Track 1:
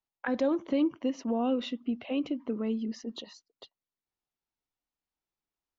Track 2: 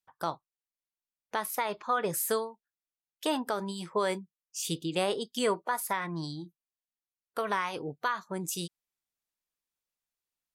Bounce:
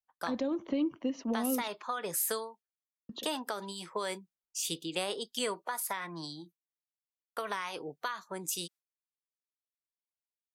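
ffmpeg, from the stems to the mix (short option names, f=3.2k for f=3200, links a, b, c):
-filter_complex "[0:a]agate=range=-9dB:threshold=-44dB:ratio=16:detection=peak,volume=-1.5dB,asplit=3[a][b][c];[a]atrim=end=1.68,asetpts=PTS-STARTPTS,afade=t=out:st=1.676:d=0.004:c=hsin[d];[b]atrim=start=1.68:end=3.09,asetpts=PTS-STARTPTS,volume=0[e];[c]atrim=start=3.09,asetpts=PTS-STARTPTS,afade=t=in:d=0.004:c=hsin[f];[d][e][f]concat=n=3:v=0:a=1[g];[1:a]agate=range=-33dB:threshold=-48dB:ratio=3:detection=peak,highpass=f=520:p=1,volume=0.5dB[h];[g][h]amix=inputs=2:normalize=0,acrossover=split=280|3000[i][j][k];[j]acompressor=threshold=-33dB:ratio=6[l];[i][l][k]amix=inputs=3:normalize=0"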